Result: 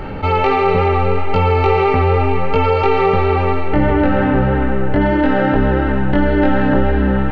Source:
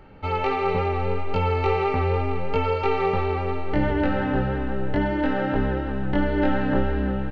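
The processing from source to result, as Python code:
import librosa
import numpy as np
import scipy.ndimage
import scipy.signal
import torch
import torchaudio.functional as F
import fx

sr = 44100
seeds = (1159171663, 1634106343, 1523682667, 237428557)

y = fx.high_shelf(x, sr, hz=3600.0, db=fx.steps((0.0, -3.0), (3.69, -11.5), (5.0, -5.0)))
y = fx.echo_wet_bandpass(y, sr, ms=433, feedback_pct=57, hz=1500.0, wet_db=-9.0)
y = fx.env_flatten(y, sr, amount_pct=50)
y = y * 10.0 ** (7.0 / 20.0)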